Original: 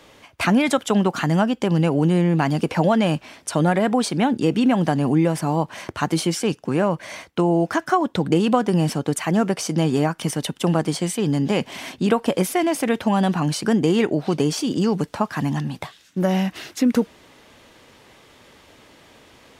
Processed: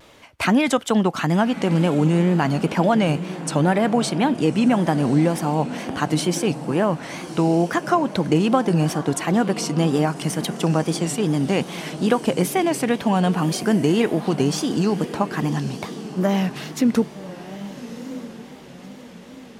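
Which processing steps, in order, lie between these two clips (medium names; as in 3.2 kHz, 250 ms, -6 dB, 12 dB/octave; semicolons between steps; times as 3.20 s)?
echo that smears into a reverb 1185 ms, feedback 43%, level -12.5 dB; wow and flutter 100 cents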